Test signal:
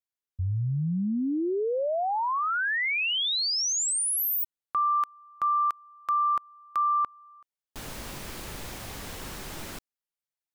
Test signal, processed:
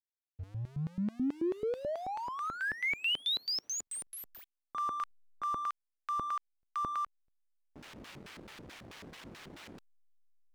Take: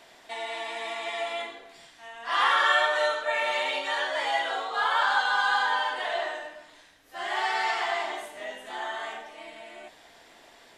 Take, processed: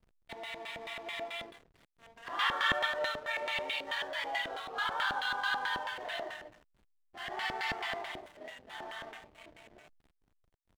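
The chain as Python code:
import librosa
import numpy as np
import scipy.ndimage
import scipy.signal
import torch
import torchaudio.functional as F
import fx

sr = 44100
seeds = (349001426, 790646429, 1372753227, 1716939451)

y = fx.quant_companded(x, sr, bits=6)
y = fx.filter_lfo_bandpass(y, sr, shape='square', hz=4.6, low_hz=300.0, high_hz=2900.0, q=0.82)
y = fx.backlash(y, sr, play_db=-43.5)
y = y * 10.0 ** (-2.5 / 20.0)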